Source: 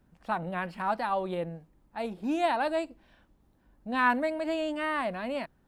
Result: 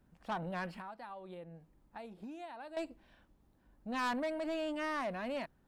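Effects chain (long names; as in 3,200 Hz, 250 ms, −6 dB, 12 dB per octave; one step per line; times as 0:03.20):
0:00.76–0:02.77: downward compressor 10 to 1, threshold −41 dBFS, peak gain reduction 19 dB
soft clipping −28 dBFS, distortion −9 dB
level −3.5 dB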